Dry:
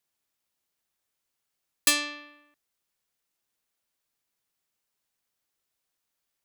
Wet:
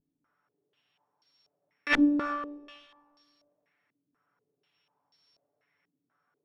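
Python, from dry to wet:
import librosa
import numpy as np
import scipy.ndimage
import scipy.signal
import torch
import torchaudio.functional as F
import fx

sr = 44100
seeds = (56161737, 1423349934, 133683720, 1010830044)

y = np.r_[np.sort(x[:len(x) // 8 * 8].reshape(-1, 8), axis=1).ravel(), x[len(x) // 8 * 8:]]
y = scipy.signal.sosfilt(scipy.signal.butter(4, 110.0, 'highpass', fs=sr, output='sos'), y)
y = fx.low_shelf(y, sr, hz=480.0, db=3.5)
y = y + 0.68 * np.pad(y, (int(6.9 * sr / 1000.0), 0))[:len(y)]
y = fx.over_compress(y, sr, threshold_db=-22.0, ratio=-0.5)
y = fx.vibrato(y, sr, rate_hz=0.33, depth_cents=12.0)
y = (np.mod(10.0 ** (16.5 / 20.0) * y + 1.0, 2.0) - 1.0) / 10.0 ** (16.5 / 20.0)
y = y + 10.0 ** (-18.5 / 20.0) * np.pad(y, (int(319 * sr / 1000.0), 0))[:len(y)]
y = fx.rev_plate(y, sr, seeds[0], rt60_s=1.6, hf_ratio=0.85, predelay_ms=0, drr_db=6.0)
y = fx.filter_held_lowpass(y, sr, hz=4.1, low_hz=280.0, high_hz=4500.0)
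y = F.gain(torch.from_numpy(y), 2.5).numpy()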